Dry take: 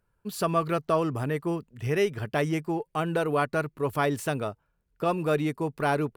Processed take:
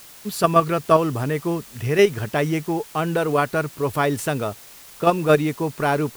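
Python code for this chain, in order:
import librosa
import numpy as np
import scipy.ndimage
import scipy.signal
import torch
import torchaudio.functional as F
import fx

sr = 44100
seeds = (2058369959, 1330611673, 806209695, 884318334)

p1 = fx.level_steps(x, sr, step_db=23)
p2 = x + (p1 * 10.0 ** (1.5 / 20.0))
p3 = fx.quant_dither(p2, sr, seeds[0], bits=8, dither='triangular')
y = p3 * 10.0 ** (4.0 / 20.0)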